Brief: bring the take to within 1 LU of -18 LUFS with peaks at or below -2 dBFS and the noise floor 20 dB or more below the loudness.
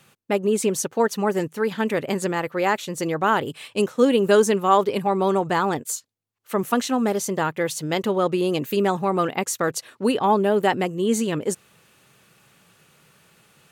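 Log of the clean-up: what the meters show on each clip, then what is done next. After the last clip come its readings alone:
loudness -22.5 LUFS; peak -4.0 dBFS; loudness target -18.0 LUFS
-> gain +4.5 dB; limiter -2 dBFS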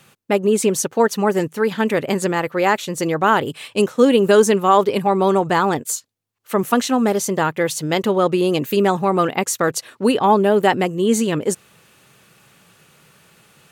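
loudness -18.0 LUFS; peak -2.0 dBFS; noise floor -54 dBFS

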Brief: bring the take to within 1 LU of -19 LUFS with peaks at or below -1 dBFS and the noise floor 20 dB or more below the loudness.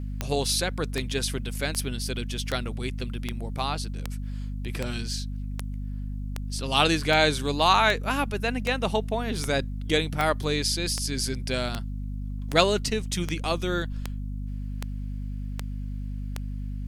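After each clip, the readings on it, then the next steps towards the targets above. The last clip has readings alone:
clicks 22; hum 50 Hz; harmonics up to 250 Hz; hum level -30 dBFS; loudness -27.5 LUFS; peak -4.5 dBFS; loudness target -19.0 LUFS
-> de-click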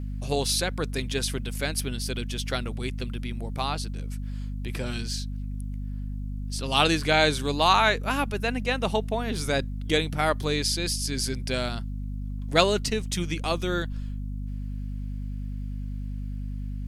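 clicks 0; hum 50 Hz; harmonics up to 250 Hz; hum level -30 dBFS
-> de-hum 50 Hz, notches 5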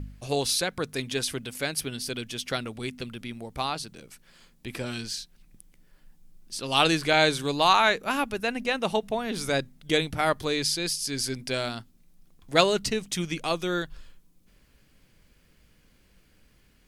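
hum none; loudness -27.0 LUFS; peak -5.0 dBFS; loudness target -19.0 LUFS
-> gain +8 dB; limiter -1 dBFS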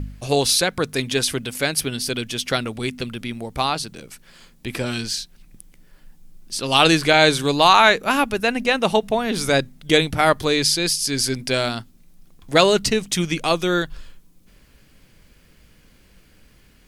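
loudness -19.5 LUFS; peak -1.0 dBFS; noise floor -54 dBFS

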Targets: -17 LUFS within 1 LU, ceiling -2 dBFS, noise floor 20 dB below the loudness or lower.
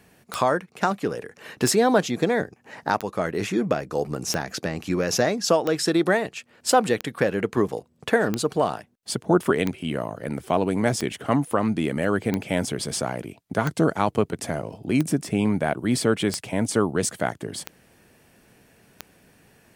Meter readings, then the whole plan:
clicks 15; loudness -24.5 LUFS; peak -5.5 dBFS; loudness target -17.0 LUFS
-> de-click; gain +7.5 dB; limiter -2 dBFS

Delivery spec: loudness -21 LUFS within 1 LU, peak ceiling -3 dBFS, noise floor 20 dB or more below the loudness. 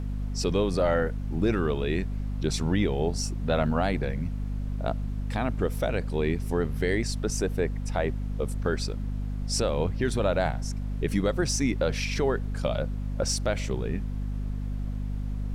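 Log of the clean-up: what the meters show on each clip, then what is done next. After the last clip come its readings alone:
hum 50 Hz; harmonics up to 250 Hz; hum level -28 dBFS; noise floor -32 dBFS; noise floor target -49 dBFS; loudness -28.5 LUFS; peak -13.0 dBFS; loudness target -21.0 LUFS
-> notches 50/100/150/200/250 Hz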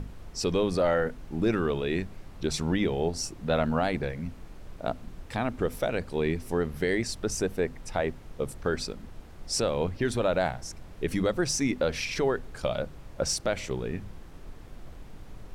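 hum none; noise floor -46 dBFS; noise floor target -50 dBFS
-> noise print and reduce 6 dB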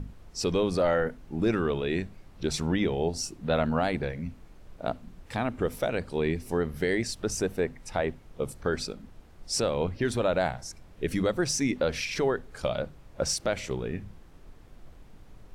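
noise floor -52 dBFS; loudness -29.5 LUFS; peak -14.5 dBFS; loudness target -21.0 LUFS
-> gain +8.5 dB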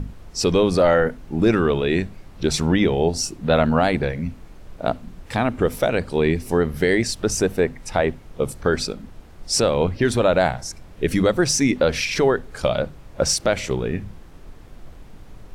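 loudness -21.0 LUFS; peak -6.0 dBFS; noise floor -43 dBFS

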